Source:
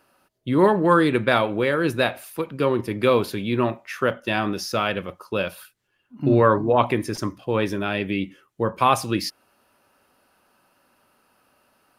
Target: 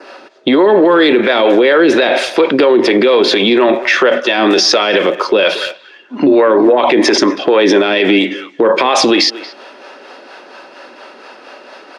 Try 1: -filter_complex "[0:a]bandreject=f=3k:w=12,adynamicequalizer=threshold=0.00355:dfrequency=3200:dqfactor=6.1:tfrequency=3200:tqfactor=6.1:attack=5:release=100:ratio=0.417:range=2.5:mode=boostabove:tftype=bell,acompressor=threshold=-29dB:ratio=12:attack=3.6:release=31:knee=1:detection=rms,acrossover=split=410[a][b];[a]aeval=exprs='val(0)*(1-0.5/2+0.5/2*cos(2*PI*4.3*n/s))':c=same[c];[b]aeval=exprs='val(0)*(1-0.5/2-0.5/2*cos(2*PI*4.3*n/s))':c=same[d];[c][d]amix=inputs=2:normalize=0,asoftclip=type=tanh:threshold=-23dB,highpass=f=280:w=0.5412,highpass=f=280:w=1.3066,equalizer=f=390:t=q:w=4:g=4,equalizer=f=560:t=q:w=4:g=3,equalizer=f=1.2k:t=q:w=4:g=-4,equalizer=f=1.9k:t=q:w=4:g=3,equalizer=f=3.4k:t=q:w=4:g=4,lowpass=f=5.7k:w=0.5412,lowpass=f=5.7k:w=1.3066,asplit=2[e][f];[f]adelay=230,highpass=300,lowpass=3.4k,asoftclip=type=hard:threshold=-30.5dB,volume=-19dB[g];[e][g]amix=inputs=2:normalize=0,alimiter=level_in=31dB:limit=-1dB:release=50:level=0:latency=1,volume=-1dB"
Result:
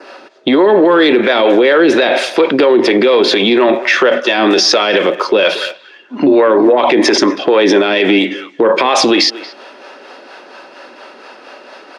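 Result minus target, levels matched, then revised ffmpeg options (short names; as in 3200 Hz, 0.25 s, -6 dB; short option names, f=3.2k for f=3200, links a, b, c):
soft clip: distortion +15 dB
-filter_complex "[0:a]bandreject=f=3k:w=12,adynamicequalizer=threshold=0.00355:dfrequency=3200:dqfactor=6.1:tfrequency=3200:tqfactor=6.1:attack=5:release=100:ratio=0.417:range=2.5:mode=boostabove:tftype=bell,acompressor=threshold=-29dB:ratio=12:attack=3.6:release=31:knee=1:detection=rms,acrossover=split=410[a][b];[a]aeval=exprs='val(0)*(1-0.5/2+0.5/2*cos(2*PI*4.3*n/s))':c=same[c];[b]aeval=exprs='val(0)*(1-0.5/2-0.5/2*cos(2*PI*4.3*n/s))':c=same[d];[c][d]amix=inputs=2:normalize=0,asoftclip=type=tanh:threshold=-15dB,highpass=f=280:w=0.5412,highpass=f=280:w=1.3066,equalizer=f=390:t=q:w=4:g=4,equalizer=f=560:t=q:w=4:g=3,equalizer=f=1.2k:t=q:w=4:g=-4,equalizer=f=1.9k:t=q:w=4:g=3,equalizer=f=3.4k:t=q:w=4:g=4,lowpass=f=5.7k:w=0.5412,lowpass=f=5.7k:w=1.3066,asplit=2[e][f];[f]adelay=230,highpass=300,lowpass=3.4k,asoftclip=type=hard:threshold=-30.5dB,volume=-19dB[g];[e][g]amix=inputs=2:normalize=0,alimiter=level_in=31dB:limit=-1dB:release=50:level=0:latency=1,volume=-1dB"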